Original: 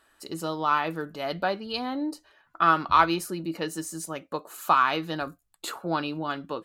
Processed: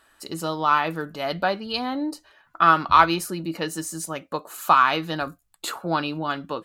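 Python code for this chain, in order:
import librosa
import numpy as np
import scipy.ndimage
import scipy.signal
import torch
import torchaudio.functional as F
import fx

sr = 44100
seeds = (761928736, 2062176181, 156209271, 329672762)

y = fx.peak_eq(x, sr, hz=380.0, db=-3.0, octaves=0.98)
y = y * 10.0 ** (4.5 / 20.0)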